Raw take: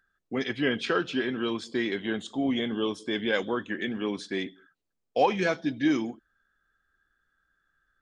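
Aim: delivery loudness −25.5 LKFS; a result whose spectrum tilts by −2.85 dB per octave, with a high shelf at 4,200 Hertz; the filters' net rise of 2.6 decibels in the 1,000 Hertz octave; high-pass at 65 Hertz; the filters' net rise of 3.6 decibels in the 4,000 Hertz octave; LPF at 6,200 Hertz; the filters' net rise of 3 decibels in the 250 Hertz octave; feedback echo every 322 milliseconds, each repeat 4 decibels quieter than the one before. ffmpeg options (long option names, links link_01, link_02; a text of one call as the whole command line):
ffmpeg -i in.wav -af "highpass=65,lowpass=6200,equalizer=frequency=250:width_type=o:gain=3.5,equalizer=frequency=1000:width_type=o:gain=3,equalizer=frequency=4000:width_type=o:gain=3,highshelf=frequency=4200:gain=4,aecho=1:1:322|644|966|1288|1610|1932|2254|2576|2898:0.631|0.398|0.25|0.158|0.0994|0.0626|0.0394|0.0249|0.0157,volume=-0.5dB" out.wav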